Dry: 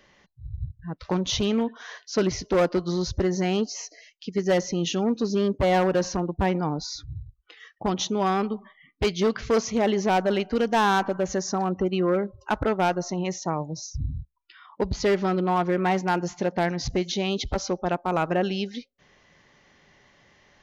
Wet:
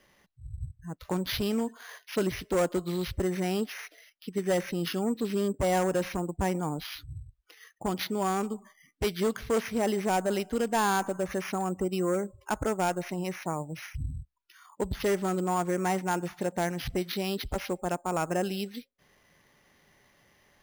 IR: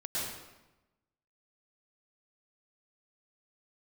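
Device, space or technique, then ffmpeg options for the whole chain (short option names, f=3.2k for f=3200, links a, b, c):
crushed at another speed: -af "asetrate=22050,aresample=44100,acrusher=samples=11:mix=1:aa=0.000001,asetrate=88200,aresample=44100,volume=-5dB"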